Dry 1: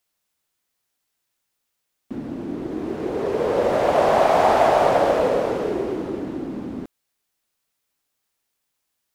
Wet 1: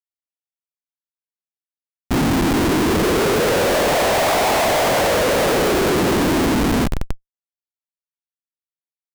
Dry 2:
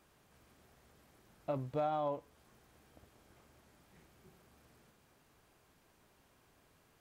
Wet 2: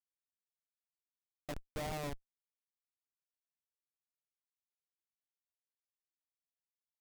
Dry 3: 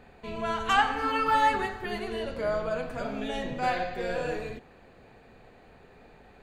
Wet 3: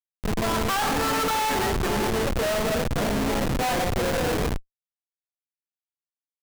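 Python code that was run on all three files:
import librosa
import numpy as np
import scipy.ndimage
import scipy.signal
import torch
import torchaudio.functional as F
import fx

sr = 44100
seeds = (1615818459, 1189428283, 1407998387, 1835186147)

y = fx.echo_split(x, sr, split_hz=400.0, low_ms=80, high_ms=585, feedback_pct=52, wet_db=-15)
y = fx.schmitt(y, sr, flips_db=-33.0)
y = y * librosa.db_to_amplitude(6.5)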